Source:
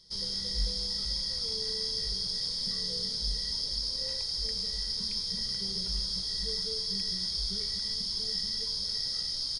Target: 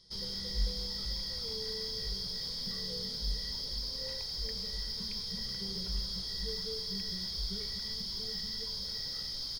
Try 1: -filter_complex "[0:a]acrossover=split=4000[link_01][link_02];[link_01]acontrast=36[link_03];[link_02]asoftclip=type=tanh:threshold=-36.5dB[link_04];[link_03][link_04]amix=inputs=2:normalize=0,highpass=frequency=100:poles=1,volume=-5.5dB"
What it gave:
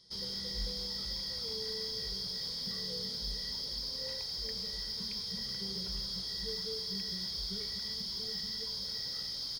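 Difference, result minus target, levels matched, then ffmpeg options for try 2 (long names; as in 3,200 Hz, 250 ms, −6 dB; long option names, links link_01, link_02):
125 Hz band −4.0 dB
-filter_complex "[0:a]acrossover=split=4000[link_01][link_02];[link_01]acontrast=36[link_03];[link_02]asoftclip=type=tanh:threshold=-36.5dB[link_04];[link_03][link_04]amix=inputs=2:normalize=0,volume=-5.5dB"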